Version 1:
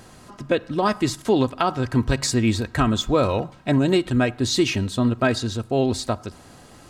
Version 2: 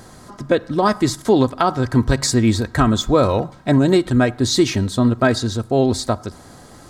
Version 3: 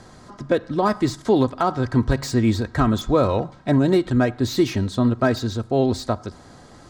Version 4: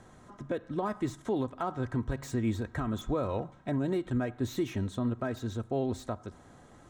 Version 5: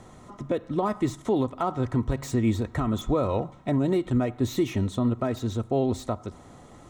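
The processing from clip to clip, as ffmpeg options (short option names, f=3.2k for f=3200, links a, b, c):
-af "equalizer=f=2.7k:t=o:w=0.39:g=-9.5,volume=4.5dB"
-filter_complex "[0:a]lowpass=6.6k,acrossover=split=600|1400[a][b][c];[c]asoftclip=type=tanh:threshold=-25dB[d];[a][b][d]amix=inputs=3:normalize=0,volume=-3dB"
-af "equalizer=f=4.7k:t=o:w=0.39:g=-13.5,alimiter=limit=-12.5dB:level=0:latency=1:release=249,volume=-9dB"
-af "bandreject=f=1.6k:w=5.9,volume=6.5dB"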